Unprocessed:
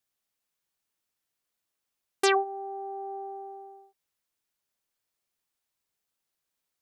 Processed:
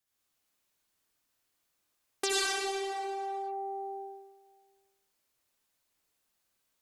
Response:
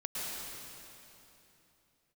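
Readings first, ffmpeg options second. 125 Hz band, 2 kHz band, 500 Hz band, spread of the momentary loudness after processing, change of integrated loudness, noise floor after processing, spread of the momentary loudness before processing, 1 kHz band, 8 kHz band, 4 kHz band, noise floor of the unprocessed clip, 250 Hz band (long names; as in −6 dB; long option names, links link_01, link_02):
can't be measured, −2.0 dB, −4.5 dB, 14 LU, −3.5 dB, −79 dBFS, 18 LU, −3.0 dB, +4.0 dB, +2.5 dB, −85 dBFS, −4.5 dB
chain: -filter_complex "[1:a]atrim=start_sample=2205,asetrate=74970,aresample=44100[link_01];[0:a][link_01]afir=irnorm=-1:irlink=0,asplit=2[link_02][link_03];[link_03]asoftclip=type=tanh:threshold=-30.5dB,volume=-11.5dB[link_04];[link_02][link_04]amix=inputs=2:normalize=0,acrossover=split=200|3000[link_05][link_06][link_07];[link_06]acompressor=threshold=-38dB:ratio=6[link_08];[link_05][link_08][link_07]amix=inputs=3:normalize=0,volume=4.5dB"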